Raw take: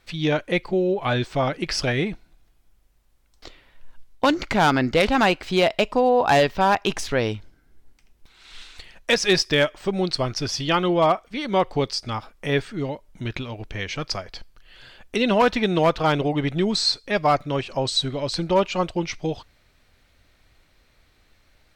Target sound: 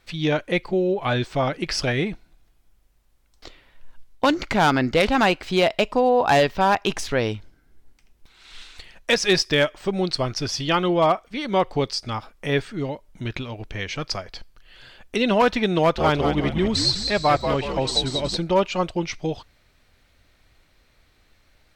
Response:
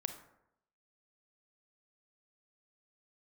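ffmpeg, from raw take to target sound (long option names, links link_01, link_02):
-filter_complex "[0:a]asettb=1/sr,asplit=3[link_01][link_02][link_03];[link_01]atrim=end=15.794[link_04];[link_02]atrim=start=15.79:end=18.37,asetpts=PTS-STARTPTS,afade=type=in:duration=0.004:curve=qsin,afade=type=out:start_time=2.576:duration=0.004:curve=qsin,asplit=6[link_05][link_06][link_07][link_08][link_09][link_10];[link_06]adelay=186,afreqshift=-85,volume=-6.5dB[link_11];[link_07]adelay=372,afreqshift=-170,volume=-13.2dB[link_12];[link_08]adelay=558,afreqshift=-255,volume=-20dB[link_13];[link_09]adelay=744,afreqshift=-340,volume=-26.7dB[link_14];[link_10]adelay=930,afreqshift=-425,volume=-33.5dB[link_15];[link_05][link_11][link_12][link_13][link_14][link_15]amix=inputs=6:normalize=0,atrim=end_sample=113778[link_16];[link_03]atrim=start=18.366[link_17];[link_04][link_16]acrossfade=duration=0.004:curve1=hsin:curve2=qsin[link_18];[link_18][link_17]acrossfade=duration=0.004:curve1=qsin:curve2=hsin"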